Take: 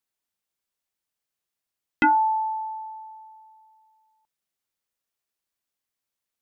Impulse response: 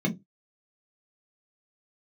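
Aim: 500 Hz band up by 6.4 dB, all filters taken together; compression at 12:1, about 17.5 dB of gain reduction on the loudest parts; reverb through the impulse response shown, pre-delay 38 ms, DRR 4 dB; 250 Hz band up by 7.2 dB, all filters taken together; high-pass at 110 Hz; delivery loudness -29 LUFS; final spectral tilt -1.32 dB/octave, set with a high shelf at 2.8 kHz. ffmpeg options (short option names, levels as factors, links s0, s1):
-filter_complex "[0:a]highpass=110,equalizer=f=250:t=o:g=7.5,equalizer=f=500:t=o:g=4.5,highshelf=f=2800:g=3.5,acompressor=threshold=0.0316:ratio=12,asplit=2[s0][s1];[1:a]atrim=start_sample=2205,adelay=38[s2];[s1][s2]afir=irnorm=-1:irlink=0,volume=0.237[s3];[s0][s3]amix=inputs=2:normalize=0,volume=1.19"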